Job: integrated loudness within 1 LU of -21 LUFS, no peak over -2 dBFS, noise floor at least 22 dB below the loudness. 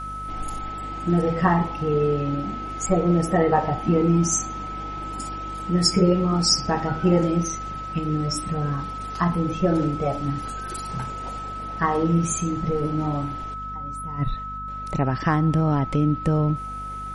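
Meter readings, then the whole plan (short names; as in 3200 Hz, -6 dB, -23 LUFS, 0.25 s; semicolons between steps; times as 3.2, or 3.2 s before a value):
hum 50 Hz; harmonics up to 250 Hz; hum level -35 dBFS; steady tone 1300 Hz; tone level -31 dBFS; loudness -24.0 LUFS; peak -6.0 dBFS; loudness target -21.0 LUFS
-> notches 50/100/150/200/250 Hz; notch 1300 Hz, Q 30; gain +3 dB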